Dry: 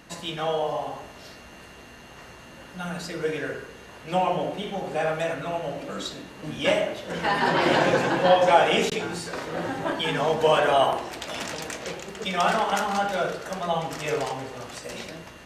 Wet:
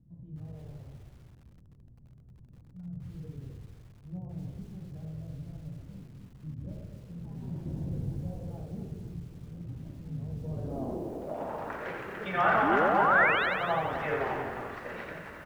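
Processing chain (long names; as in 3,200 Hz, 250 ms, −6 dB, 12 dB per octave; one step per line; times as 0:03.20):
sound drawn into the spectrogram rise, 0:12.62–0:13.46, 250–4,200 Hz −24 dBFS
low-pass filter sweep 130 Hz → 1,700 Hz, 0:10.40–0:11.87
echo with shifted repeats 87 ms, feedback 52%, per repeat −44 Hz, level −5 dB
feedback echo at a low word length 257 ms, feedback 35%, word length 8 bits, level −8.5 dB
level −6.5 dB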